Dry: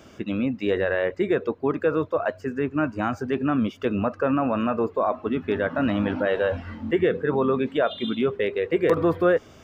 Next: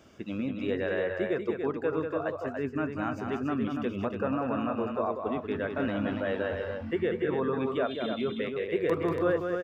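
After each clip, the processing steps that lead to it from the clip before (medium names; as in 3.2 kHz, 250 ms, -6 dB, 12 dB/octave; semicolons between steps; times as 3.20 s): loudspeakers at several distances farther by 65 m -6 dB, 98 m -6 dB; trim -8 dB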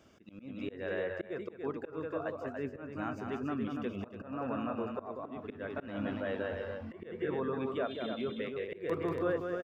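slow attack 199 ms; echo from a far wall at 300 m, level -16 dB; trim -5.5 dB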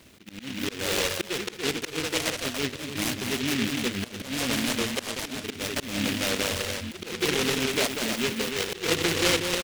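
delay time shaken by noise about 2.5 kHz, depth 0.33 ms; trim +8.5 dB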